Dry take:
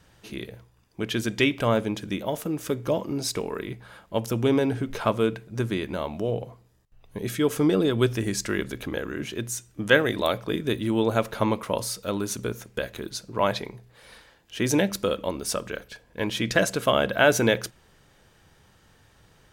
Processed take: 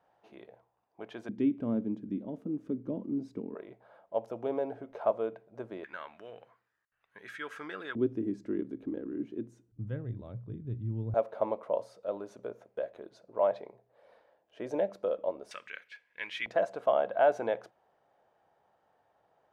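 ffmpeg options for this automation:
-af "asetnsamples=n=441:p=0,asendcmd='1.29 bandpass f 250;3.55 bandpass f 650;5.84 bandpass f 1600;7.95 bandpass f 290;9.72 bandpass f 110;11.14 bandpass f 620;15.51 bandpass f 2100;16.46 bandpass f 710',bandpass=f=740:t=q:w=3.4:csg=0"

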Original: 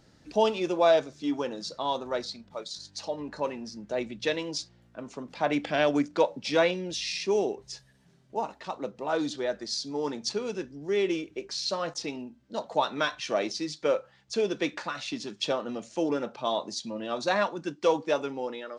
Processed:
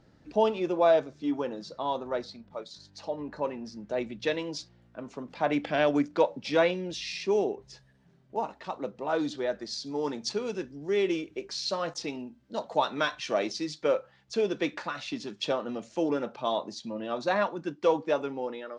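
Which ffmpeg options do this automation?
-af "asetnsamples=n=441:p=0,asendcmd='3.65 lowpass f 3300;7.44 lowpass f 1900;8.36 lowpass f 3600;9.86 lowpass f 6800;13.8 lowpass f 4000;16.58 lowpass f 2400',lowpass=f=1800:p=1"

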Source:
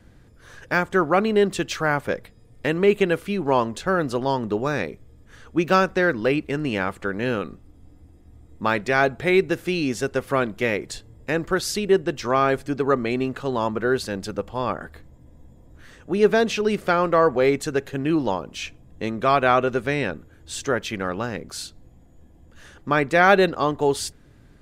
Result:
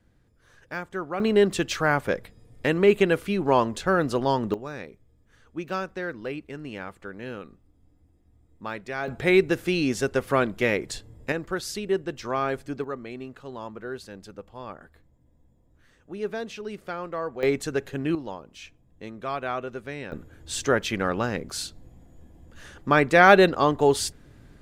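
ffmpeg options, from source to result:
-af "asetnsamples=n=441:p=0,asendcmd='1.2 volume volume -0.5dB;4.54 volume volume -12dB;9.08 volume volume -0.5dB;11.32 volume volume -7dB;12.84 volume volume -13.5dB;17.43 volume volume -3.5dB;18.15 volume volume -12dB;20.12 volume volume 1dB',volume=0.251"

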